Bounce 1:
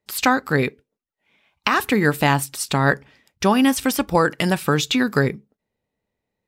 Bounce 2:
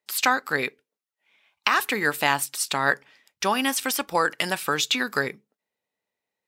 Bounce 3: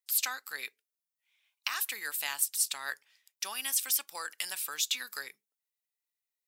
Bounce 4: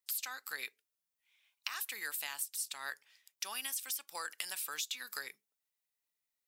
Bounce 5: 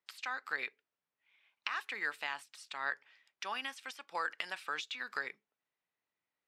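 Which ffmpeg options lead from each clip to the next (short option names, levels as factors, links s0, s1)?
-af "highpass=f=1000:p=1"
-af "aderivative,volume=0.794"
-af "acompressor=threshold=0.0141:ratio=6,volume=1.12"
-af "highpass=110,lowpass=2200,volume=2.24"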